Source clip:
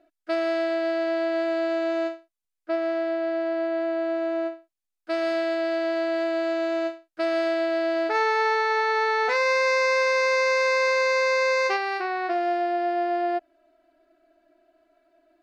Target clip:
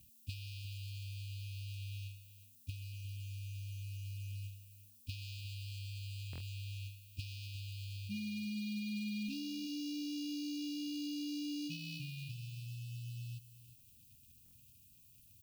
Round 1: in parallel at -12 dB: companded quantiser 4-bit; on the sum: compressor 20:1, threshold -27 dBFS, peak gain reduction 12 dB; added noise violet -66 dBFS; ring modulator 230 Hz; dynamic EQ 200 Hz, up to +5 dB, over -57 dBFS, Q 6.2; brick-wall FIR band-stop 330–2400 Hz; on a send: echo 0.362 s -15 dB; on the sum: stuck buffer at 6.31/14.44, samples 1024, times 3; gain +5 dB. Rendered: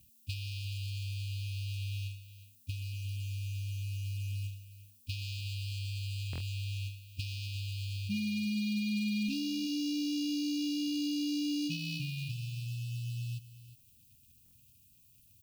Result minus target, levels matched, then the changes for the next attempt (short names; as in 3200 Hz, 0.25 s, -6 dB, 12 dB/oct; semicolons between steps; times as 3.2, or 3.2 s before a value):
compressor: peak gain reduction -7 dB
change: compressor 20:1, threshold -34.5 dBFS, peak gain reduction 19 dB